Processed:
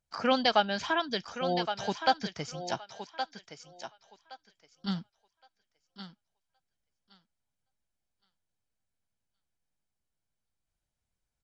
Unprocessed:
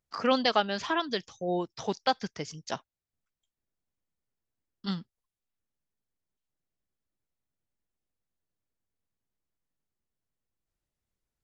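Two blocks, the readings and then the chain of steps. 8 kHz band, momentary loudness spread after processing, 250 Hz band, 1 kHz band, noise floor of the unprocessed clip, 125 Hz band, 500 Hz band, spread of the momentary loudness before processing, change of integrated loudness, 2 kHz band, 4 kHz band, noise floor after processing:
no reading, 22 LU, -1.0 dB, +1.5 dB, under -85 dBFS, +0.5 dB, -0.5 dB, 14 LU, 0.0 dB, +1.5 dB, +1.0 dB, -85 dBFS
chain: comb 1.3 ms, depth 33%; thinning echo 1118 ms, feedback 20%, high-pass 360 Hz, level -8 dB; MP3 48 kbps 24 kHz

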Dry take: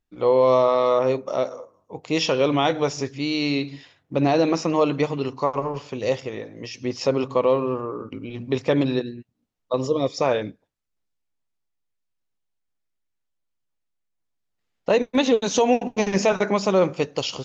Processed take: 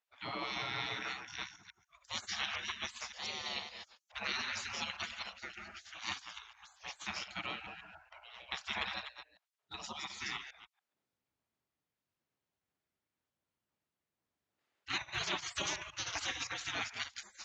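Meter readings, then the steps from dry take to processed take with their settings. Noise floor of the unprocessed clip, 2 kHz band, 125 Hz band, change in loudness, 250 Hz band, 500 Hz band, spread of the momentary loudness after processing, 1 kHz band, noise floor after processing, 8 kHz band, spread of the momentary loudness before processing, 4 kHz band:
-77 dBFS, -6.5 dB, -24.5 dB, -17.5 dB, -29.5 dB, -33.0 dB, 15 LU, -18.0 dB, under -85 dBFS, no reading, 13 LU, -7.0 dB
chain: chunks repeated in reverse 142 ms, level -8 dB; treble shelf 3.6 kHz -10 dB; spectral gate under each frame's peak -30 dB weak; high-pass 67 Hz; trim +3.5 dB

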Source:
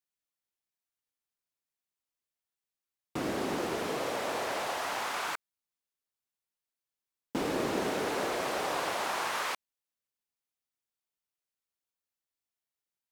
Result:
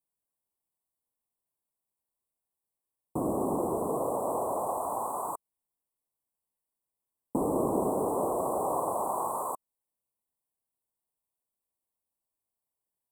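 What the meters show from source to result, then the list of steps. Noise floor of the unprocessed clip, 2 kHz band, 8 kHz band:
under -85 dBFS, under -30 dB, -0.5 dB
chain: Chebyshev band-stop 1.1–7.9 kHz, order 5; trim +4.5 dB

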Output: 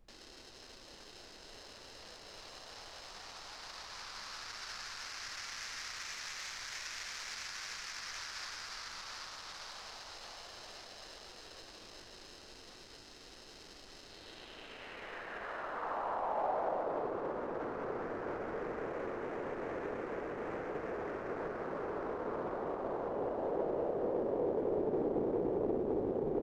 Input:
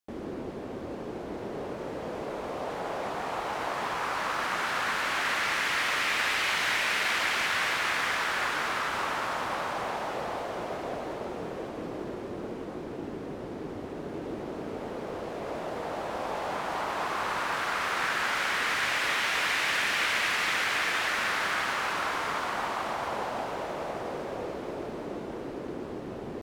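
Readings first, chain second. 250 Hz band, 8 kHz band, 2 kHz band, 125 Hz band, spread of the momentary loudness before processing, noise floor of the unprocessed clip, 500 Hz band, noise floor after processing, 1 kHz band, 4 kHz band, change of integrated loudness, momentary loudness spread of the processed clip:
-4.0 dB, -9.0 dB, -18.5 dB, -7.5 dB, 12 LU, -39 dBFS, -2.5 dB, -55 dBFS, -11.5 dB, -13.0 dB, -9.5 dB, 18 LU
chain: median filter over 15 samples; in parallel at -9 dB: sample-and-hold 38×; on the sum: peak limiter -29.5 dBFS, peak gain reduction 11.5 dB; band-pass sweep 4.9 kHz -> 440 Hz, 14.02–17.10 s; added noise brown -71 dBFS; on a send: frequency-shifting echo 380 ms, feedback 61%, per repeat -110 Hz, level -11.5 dB; on the sum: loudspeaker Doppler distortion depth 0.32 ms; trim +7.5 dB

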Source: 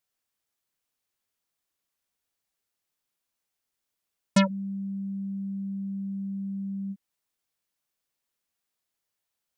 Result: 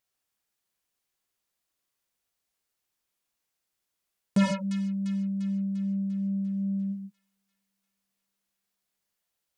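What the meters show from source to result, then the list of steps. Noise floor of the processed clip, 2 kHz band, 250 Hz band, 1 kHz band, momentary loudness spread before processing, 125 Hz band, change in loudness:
-83 dBFS, -2.5 dB, +2.0 dB, -3.5 dB, 10 LU, +2.0 dB, +1.5 dB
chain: vibrato 2.6 Hz 5.4 cents; on a send: feedback echo behind a high-pass 347 ms, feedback 57%, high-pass 1.9 kHz, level -16 dB; on the sum: gated-style reverb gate 170 ms flat, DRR 4.5 dB; transformer saturation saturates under 380 Hz

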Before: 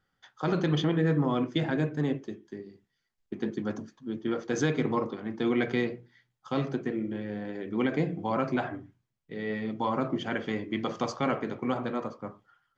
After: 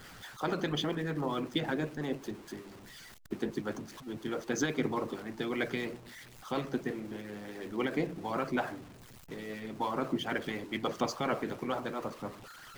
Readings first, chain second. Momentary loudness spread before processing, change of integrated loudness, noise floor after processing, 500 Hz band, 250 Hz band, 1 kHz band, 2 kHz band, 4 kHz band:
13 LU, -5.0 dB, -52 dBFS, -4.5 dB, -6.0 dB, -3.0 dB, -2.0 dB, 0.0 dB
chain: jump at every zero crossing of -40.5 dBFS; harmonic-percussive split harmonic -12 dB

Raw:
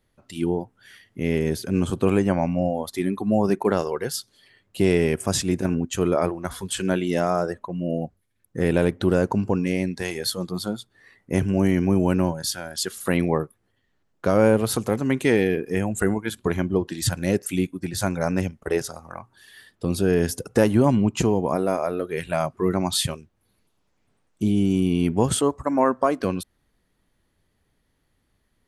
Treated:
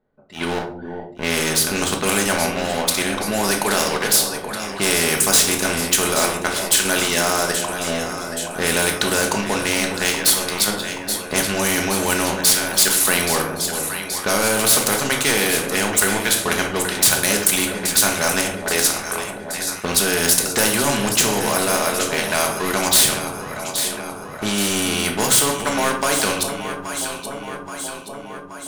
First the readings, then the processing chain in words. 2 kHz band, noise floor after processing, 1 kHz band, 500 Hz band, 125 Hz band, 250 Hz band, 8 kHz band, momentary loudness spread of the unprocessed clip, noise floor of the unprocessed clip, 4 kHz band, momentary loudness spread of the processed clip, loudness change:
+12.5 dB, -33 dBFS, +6.5 dB, 0.0 dB, -5.0 dB, -2.5 dB, +16.5 dB, 9 LU, -70 dBFS, +13.5 dB, 12 LU, +5.5 dB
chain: RIAA curve recording; level-controlled noise filter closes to 660 Hz, open at -20 dBFS; waveshaping leveller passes 2; in parallel at +1 dB: level held to a coarse grid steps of 23 dB; on the sum: small resonant body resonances 1.5/3.9 kHz, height 12 dB; on a send: echo whose repeats swap between lows and highs 413 ms, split 840 Hz, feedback 70%, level -13 dB; on the sum: simulated room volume 330 m³, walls furnished, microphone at 1.4 m; spectrum-flattening compressor 2:1; trim -6.5 dB

